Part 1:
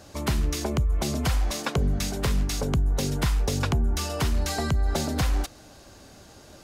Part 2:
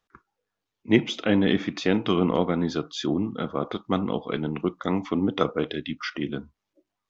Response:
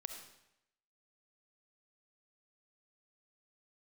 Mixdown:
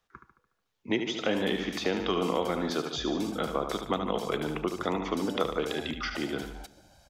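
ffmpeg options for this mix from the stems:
-filter_complex "[0:a]alimiter=limit=0.0841:level=0:latency=1:release=101,aecho=1:1:1.3:1,adelay=1200,volume=0.224[s0];[1:a]volume=1.26,asplit=2[s1][s2];[s2]volume=0.398,aecho=0:1:73|146|219|292|365|438|511:1|0.51|0.26|0.133|0.0677|0.0345|0.0176[s3];[s0][s1][s3]amix=inputs=3:normalize=0,acrossover=split=260|1200|3600[s4][s5][s6][s7];[s4]acompressor=threshold=0.00708:ratio=4[s8];[s5]acompressor=threshold=0.0562:ratio=4[s9];[s6]acompressor=threshold=0.0126:ratio=4[s10];[s7]acompressor=threshold=0.0112:ratio=4[s11];[s8][s9][s10][s11]amix=inputs=4:normalize=0,equalizer=f=290:t=o:w=0.74:g=-3.5"

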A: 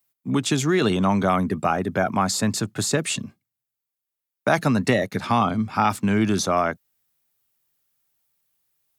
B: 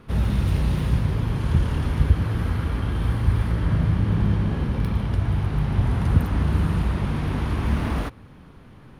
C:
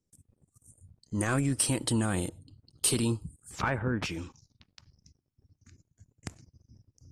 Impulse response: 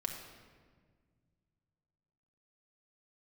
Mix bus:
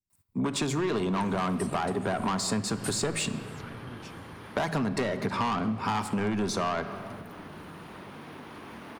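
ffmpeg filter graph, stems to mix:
-filter_complex "[0:a]equalizer=f=400:t=o:w=0.33:g=6,equalizer=f=1000:t=o:w=0.33:g=9,equalizer=f=3150:t=o:w=0.33:g=-5,equalizer=f=6300:t=o:w=0.33:g=-5,equalizer=f=12500:t=o:w=0.33:g=-12,asoftclip=type=tanh:threshold=0.119,adelay=100,volume=0.75,asplit=2[s0][s1];[s1]volume=0.596[s2];[1:a]highpass=310,acompressor=threshold=0.0158:ratio=6,adelay=1050,volume=0.562[s3];[2:a]equalizer=f=780:t=o:w=2.9:g=-13,volume=0.316[s4];[3:a]atrim=start_sample=2205[s5];[s2][s5]afir=irnorm=-1:irlink=0[s6];[s0][s3][s4][s6]amix=inputs=4:normalize=0,acompressor=threshold=0.0501:ratio=6"

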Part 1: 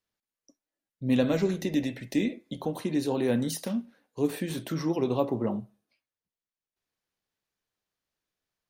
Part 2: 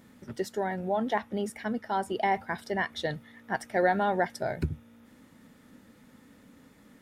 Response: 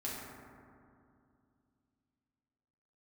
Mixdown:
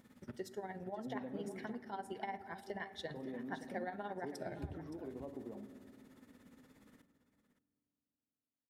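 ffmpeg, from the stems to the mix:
-filter_complex "[0:a]acompressor=threshold=0.0282:ratio=6,bandpass=f=390:t=q:w=0.65:csg=0,adelay=50,volume=0.224,asplit=3[s0][s1][s2];[s0]atrim=end=1.7,asetpts=PTS-STARTPTS,afade=t=out:st=1.696:d=0.004:c=hsin[s3];[s1]atrim=start=1.7:end=3.14,asetpts=PTS-STARTPTS,volume=0[s4];[s2]atrim=start=3.14,asetpts=PTS-STARTPTS,afade=t=in:d=0.004:c=hsin[s5];[s3][s4][s5]concat=n=3:v=0:a=1,asplit=2[s6][s7];[s7]volume=0.282[s8];[1:a]acompressor=threshold=0.0141:ratio=2.5,tremolo=f=17:d=0.71,volume=0.531,asplit=3[s9][s10][s11];[s10]volume=0.2[s12];[s11]volume=0.251[s13];[2:a]atrim=start_sample=2205[s14];[s8][s12]amix=inputs=2:normalize=0[s15];[s15][s14]afir=irnorm=-1:irlink=0[s16];[s13]aecho=0:1:570:1[s17];[s6][s9][s16][s17]amix=inputs=4:normalize=0"

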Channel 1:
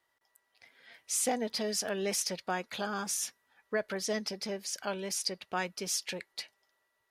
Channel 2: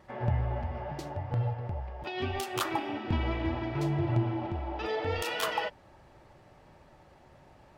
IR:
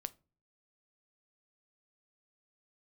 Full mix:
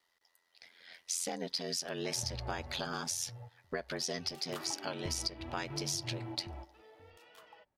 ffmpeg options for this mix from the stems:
-filter_complex "[0:a]equalizer=f=4500:t=o:w=1.1:g=8.5,aeval=exprs='val(0)*sin(2*PI*43*n/s)':c=same,volume=1.19,asplit=2[s0][s1];[1:a]adelay=1950,volume=1.12,afade=t=out:st=2.54:d=0.56:silence=0.298538,afade=t=in:st=4.2:d=0.54:silence=0.375837[s2];[s1]apad=whole_len=433463[s3];[s2][s3]sidechaingate=range=0.141:threshold=0.00112:ratio=16:detection=peak[s4];[s0][s4]amix=inputs=2:normalize=0,acompressor=threshold=0.0224:ratio=6"

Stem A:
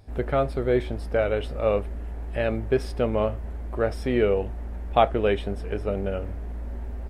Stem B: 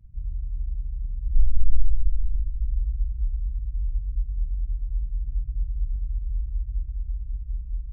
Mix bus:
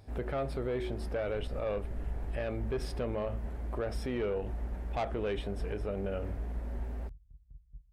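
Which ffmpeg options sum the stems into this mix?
-filter_complex "[0:a]bandreject=f=73.93:t=h:w=4,bandreject=f=147.86:t=h:w=4,bandreject=f=221.79:t=h:w=4,bandreject=f=295.72:t=h:w=4,bandreject=f=369.65:t=h:w=4,volume=0.794[s0];[1:a]asoftclip=type=tanh:threshold=0.0708,agate=range=0.0447:threshold=0.0501:ratio=16:detection=peak,volume=1[s1];[s0][s1]amix=inputs=2:normalize=0,highpass=f=43:p=1,asoftclip=type=tanh:threshold=0.126,alimiter=level_in=1.41:limit=0.0631:level=0:latency=1:release=94,volume=0.708"

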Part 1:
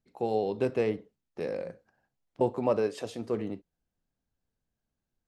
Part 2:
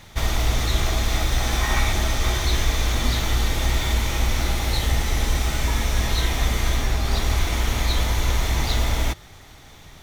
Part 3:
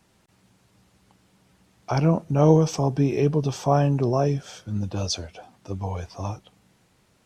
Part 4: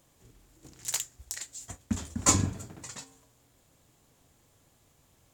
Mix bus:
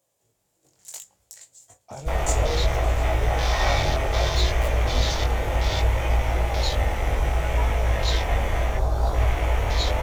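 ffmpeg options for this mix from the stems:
-filter_complex "[0:a]aeval=exprs='(mod(7.5*val(0)+1,2)-1)/7.5':c=same,adelay=1950,volume=0.398[s0];[1:a]afwtdn=0.0316,adelay=1900,volume=1.33[s1];[2:a]agate=range=0.0224:threshold=0.00141:ratio=3:detection=peak,dynaudnorm=f=220:g=7:m=5.62,volume=0.112,asplit=2[s2][s3];[3:a]highpass=110,volume=0.376[s4];[s3]apad=whole_len=318500[s5];[s0][s5]sidechaincompress=threshold=0.0126:ratio=8:attack=16:release=672[s6];[s6][s1][s2][s4]amix=inputs=4:normalize=0,firequalizer=gain_entry='entry(120,0);entry(220,-8);entry(540,8);entry(1200,-1);entry(7800,6)':delay=0.05:min_phase=1,flanger=delay=18.5:depth=3.2:speed=0.65"

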